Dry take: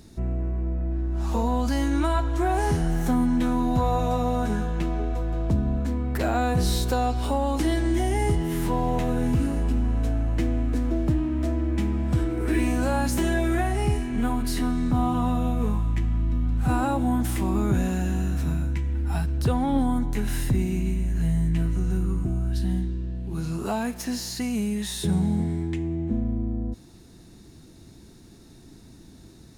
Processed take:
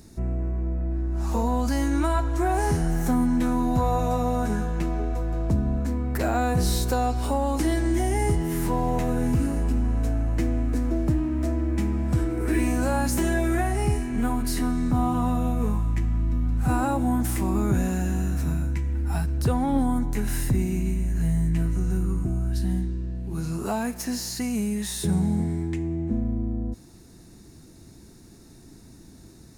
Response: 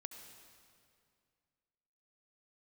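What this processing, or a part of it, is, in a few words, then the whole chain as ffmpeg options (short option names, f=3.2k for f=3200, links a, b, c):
exciter from parts: -filter_complex "[0:a]asplit=2[a][b];[b]highpass=f=3.1k:w=0.5412,highpass=f=3.1k:w=1.3066,asoftclip=type=tanh:threshold=-29.5dB,volume=-4.5dB[c];[a][c]amix=inputs=2:normalize=0"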